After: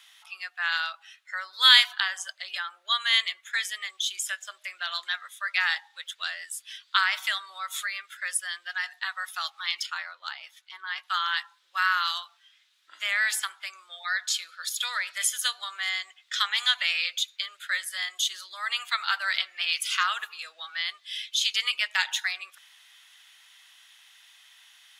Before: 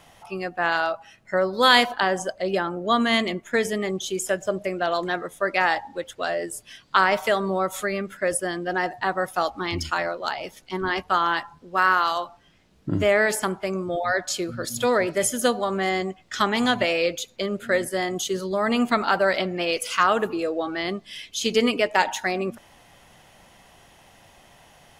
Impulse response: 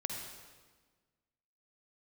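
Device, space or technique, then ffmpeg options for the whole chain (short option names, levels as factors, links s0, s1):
headphones lying on a table: -filter_complex "[0:a]highpass=f=1400:w=0.5412,highpass=f=1400:w=1.3066,equalizer=f=3600:t=o:w=0.39:g=9,asettb=1/sr,asplit=3[s0][s1][s2];[s0]atrim=end=8.714[s3];[s1]atrim=start=8.71:end=9.17,asetpts=PTS-STARTPTS,afade=t=in:d=0.004:c=qsin,afade=t=out:st=0.456:d=0.004:c=qsin,highpass=f=850:p=1[s4];[s2]atrim=start=9.166[s5];[s3][s4]acrossfade=d=0.004:c1=hsin:c2=qsin[s6];[s6][s5]acrossfade=d=0.004:c1=qsin:c2=hsin,asplit=3[s7][s8][s9];[s7]afade=t=out:st=9.85:d=0.02[s10];[s8]highshelf=f=2100:g=-10,afade=t=in:st=9.85:d=0.02,afade=t=out:st=11.02:d=0.02[s11];[s9]afade=t=in:st=11.02:d=0.02[s12];[s10][s11][s12]amix=inputs=3:normalize=0,volume=0.891"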